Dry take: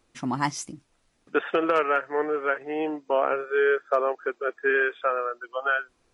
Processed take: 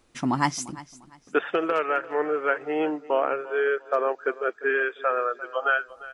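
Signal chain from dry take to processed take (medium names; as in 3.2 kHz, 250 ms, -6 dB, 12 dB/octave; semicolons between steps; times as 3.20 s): gain riding 0.5 s; feedback delay 348 ms, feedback 29%, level -18 dB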